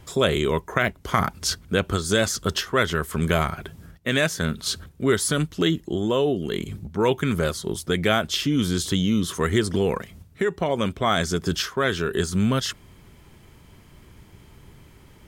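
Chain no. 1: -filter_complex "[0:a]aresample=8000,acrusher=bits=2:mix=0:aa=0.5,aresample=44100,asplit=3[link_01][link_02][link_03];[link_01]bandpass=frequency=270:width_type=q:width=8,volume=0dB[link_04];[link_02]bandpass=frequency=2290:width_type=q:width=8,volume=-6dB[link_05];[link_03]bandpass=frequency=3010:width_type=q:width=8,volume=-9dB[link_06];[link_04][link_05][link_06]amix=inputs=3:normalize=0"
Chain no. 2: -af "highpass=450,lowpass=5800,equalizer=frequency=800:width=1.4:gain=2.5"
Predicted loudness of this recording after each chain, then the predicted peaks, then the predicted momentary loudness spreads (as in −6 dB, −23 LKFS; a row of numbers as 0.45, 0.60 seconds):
−37.5, −26.5 LKFS; −16.5, −4.5 dBFS; 9, 9 LU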